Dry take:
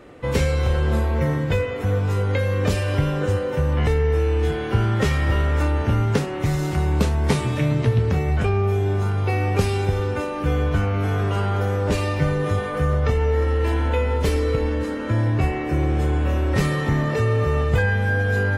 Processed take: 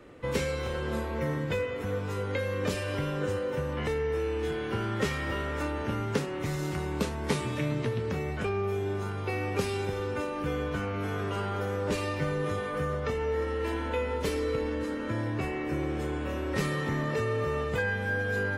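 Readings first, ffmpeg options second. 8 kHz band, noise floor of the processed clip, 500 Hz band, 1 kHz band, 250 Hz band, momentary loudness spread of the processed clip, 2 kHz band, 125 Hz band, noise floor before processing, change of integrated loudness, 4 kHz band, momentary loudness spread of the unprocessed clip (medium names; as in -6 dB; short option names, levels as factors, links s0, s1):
-6.0 dB, -34 dBFS, -6.5 dB, -7.5 dB, -7.5 dB, 3 LU, -6.0 dB, -14.0 dB, -27 dBFS, -9.5 dB, -6.0 dB, 3 LU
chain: -filter_complex "[0:a]equalizer=f=730:w=5.4:g=-5,acrossover=split=170|960[s0][s1][s2];[s0]acompressor=threshold=0.0251:ratio=6[s3];[s3][s1][s2]amix=inputs=3:normalize=0,volume=0.501"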